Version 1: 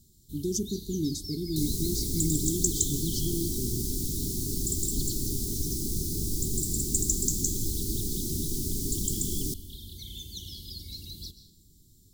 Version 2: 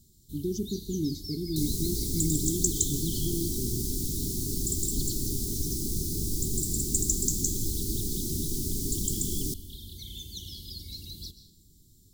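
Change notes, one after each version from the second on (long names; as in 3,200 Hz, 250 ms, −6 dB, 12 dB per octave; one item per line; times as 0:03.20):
speech: add high-frequency loss of the air 170 metres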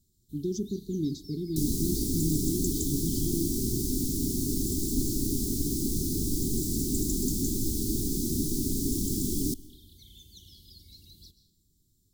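first sound −11.0 dB
second sound: add parametric band 270 Hz +9 dB 0.65 octaves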